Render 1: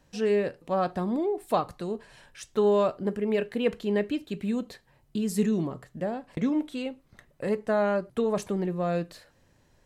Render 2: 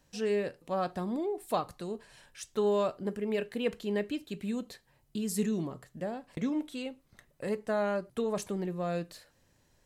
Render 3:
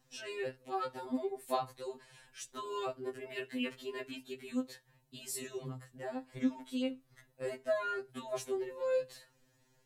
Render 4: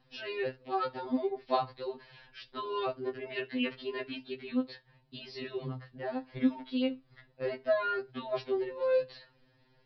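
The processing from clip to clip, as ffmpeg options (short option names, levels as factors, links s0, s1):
-af "highshelf=f=3900:g=7.5,volume=0.531"
-af "afftfilt=real='re*2.45*eq(mod(b,6),0)':imag='im*2.45*eq(mod(b,6),0)':win_size=2048:overlap=0.75"
-af "aresample=11025,aresample=44100,volume=1.68"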